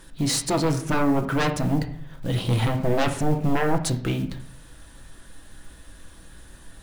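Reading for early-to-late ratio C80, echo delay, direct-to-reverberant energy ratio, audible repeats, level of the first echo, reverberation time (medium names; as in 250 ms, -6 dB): 14.5 dB, no echo, 4.0 dB, no echo, no echo, 0.65 s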